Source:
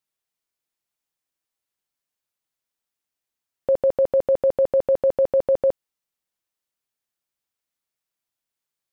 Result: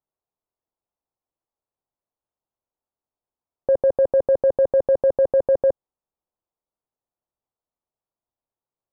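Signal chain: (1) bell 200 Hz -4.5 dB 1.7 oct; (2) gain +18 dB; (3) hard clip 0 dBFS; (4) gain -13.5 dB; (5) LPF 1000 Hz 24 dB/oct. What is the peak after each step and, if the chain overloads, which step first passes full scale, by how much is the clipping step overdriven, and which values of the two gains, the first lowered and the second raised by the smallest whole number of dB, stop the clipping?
-14.0, +4.0, 0.0, -13.5, -12.5 dBFS; step 2, 4.0 dB; step 2 +14 dB, step 4 -9.5 dB

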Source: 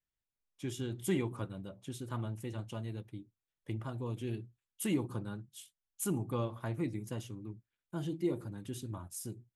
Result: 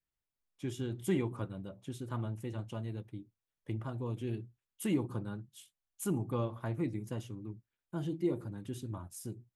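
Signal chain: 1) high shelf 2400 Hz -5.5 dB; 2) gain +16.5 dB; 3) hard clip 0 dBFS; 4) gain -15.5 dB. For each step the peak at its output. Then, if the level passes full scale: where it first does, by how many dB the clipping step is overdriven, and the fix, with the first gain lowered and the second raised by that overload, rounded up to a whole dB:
-21.5, -5.0, -5.0, -20.5 dBFS; no overload

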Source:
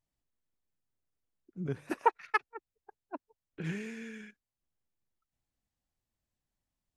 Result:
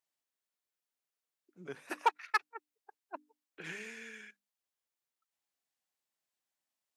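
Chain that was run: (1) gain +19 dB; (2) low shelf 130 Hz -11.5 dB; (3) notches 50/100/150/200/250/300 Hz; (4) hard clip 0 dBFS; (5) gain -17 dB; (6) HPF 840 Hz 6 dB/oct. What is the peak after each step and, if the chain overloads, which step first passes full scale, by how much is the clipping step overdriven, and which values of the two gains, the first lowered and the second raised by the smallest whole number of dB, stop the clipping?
+6.5, +6.5, +6.5, 0.0, -17.0, -15.0 dBFS; step 1, 6.5 dB; step 1 +12 dB, step 5 -10 dB

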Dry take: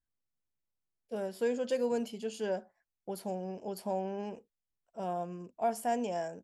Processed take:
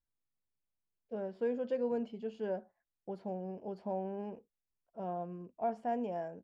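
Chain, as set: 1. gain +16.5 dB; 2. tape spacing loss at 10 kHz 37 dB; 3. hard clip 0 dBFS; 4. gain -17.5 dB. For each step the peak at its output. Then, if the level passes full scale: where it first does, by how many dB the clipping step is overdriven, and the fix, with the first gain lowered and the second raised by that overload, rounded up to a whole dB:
-3.5, -6.0, -6.0, -23.5 dBFS; no overload

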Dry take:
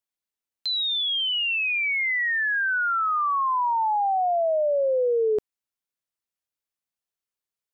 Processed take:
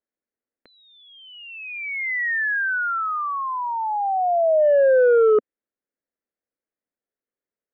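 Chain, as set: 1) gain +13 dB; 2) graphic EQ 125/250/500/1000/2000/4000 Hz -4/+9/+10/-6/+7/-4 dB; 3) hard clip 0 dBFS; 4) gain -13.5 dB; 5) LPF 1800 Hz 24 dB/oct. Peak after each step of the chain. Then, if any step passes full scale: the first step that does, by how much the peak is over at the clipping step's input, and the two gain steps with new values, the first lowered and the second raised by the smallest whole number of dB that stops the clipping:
-5.5, +5.0, 0.0, -13.5, -12.5 dBFS; step 2, 5.0 dB; step 1 +8 dB, step 4 -8.5 dB

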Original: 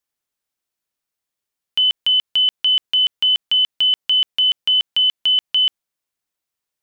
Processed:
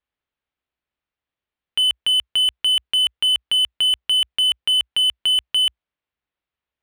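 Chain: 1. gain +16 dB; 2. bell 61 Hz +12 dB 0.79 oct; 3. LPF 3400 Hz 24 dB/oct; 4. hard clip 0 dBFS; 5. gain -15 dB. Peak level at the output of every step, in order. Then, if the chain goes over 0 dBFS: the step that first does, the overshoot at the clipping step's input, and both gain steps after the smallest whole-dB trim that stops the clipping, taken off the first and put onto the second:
+4.0, +4.5, +3.0, 0.0, -15.0 dBFS; step 1, 3.0 dB; step 1 +13 dB, step 5 -12 dB

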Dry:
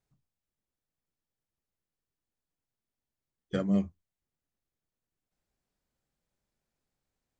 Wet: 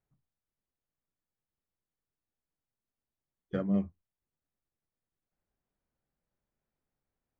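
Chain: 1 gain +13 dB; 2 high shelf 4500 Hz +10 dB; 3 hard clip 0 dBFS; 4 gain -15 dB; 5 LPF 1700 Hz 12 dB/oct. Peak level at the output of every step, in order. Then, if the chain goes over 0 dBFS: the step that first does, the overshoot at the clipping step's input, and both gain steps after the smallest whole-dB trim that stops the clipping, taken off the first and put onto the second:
-3.0, -3.0, -3.0, -18.0, -18.0 dBFS; no overload

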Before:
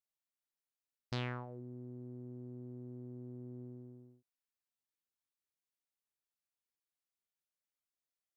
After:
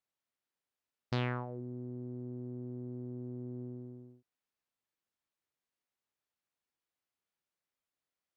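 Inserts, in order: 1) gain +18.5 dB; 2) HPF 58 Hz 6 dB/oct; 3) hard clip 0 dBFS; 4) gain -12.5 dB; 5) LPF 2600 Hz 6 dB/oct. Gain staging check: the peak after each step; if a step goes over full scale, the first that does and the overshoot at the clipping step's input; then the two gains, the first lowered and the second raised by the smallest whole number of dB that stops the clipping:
-6.0, -4.5, -4.5, -17.0, -20.5 dBFS; no overload

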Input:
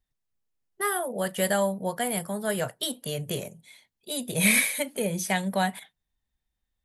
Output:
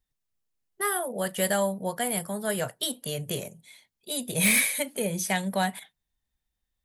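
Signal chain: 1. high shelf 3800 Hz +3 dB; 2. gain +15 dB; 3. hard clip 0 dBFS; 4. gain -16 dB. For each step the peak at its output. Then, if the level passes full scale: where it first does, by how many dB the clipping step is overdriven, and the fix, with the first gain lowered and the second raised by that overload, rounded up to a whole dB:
-7.0, +8.0, 0.0, -16.0 dBFS; step 2, 8.0 dB; step 2 +7 dB, step 4 -8 dB

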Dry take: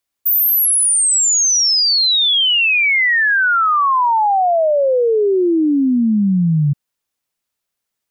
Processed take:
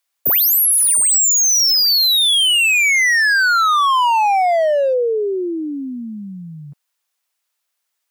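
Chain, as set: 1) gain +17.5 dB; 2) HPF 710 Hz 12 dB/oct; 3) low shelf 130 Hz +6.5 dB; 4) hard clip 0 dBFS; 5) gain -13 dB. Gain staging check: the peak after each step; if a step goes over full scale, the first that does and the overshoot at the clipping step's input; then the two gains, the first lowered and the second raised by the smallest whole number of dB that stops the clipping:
+6.5, +6.5, +6.5, 0.0, -13.0 dBFS; step 1, 6.5 dB; step 1 +10.5 dB, step 5 -6 dB

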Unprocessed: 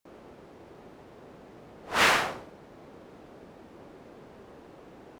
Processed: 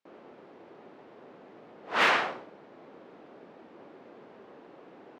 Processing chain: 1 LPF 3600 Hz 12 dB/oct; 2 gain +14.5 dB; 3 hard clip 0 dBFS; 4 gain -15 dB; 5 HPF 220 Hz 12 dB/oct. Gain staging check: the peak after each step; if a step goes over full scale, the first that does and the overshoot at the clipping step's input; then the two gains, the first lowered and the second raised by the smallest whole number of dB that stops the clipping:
-10.5, +4.0, 0.0, -15.0, -13.5 dBFS; step 2, 4.0 dB; step 2 +10.5 dB, step 4 -11 dB

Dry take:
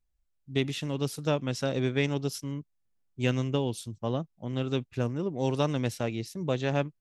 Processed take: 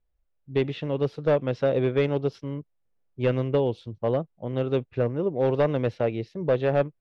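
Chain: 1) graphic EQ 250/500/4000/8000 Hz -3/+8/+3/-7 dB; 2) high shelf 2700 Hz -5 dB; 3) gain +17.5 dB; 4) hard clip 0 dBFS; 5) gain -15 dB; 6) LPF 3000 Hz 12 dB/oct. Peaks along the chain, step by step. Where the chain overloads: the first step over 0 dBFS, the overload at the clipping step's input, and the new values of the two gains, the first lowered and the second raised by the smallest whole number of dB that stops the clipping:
-10.0, -10.5, +7.0, 0.0, -15.0, -14.5 dBFS; step 3, 7.0 dB; step 3 +10.5 dB, step 5 -8 dB

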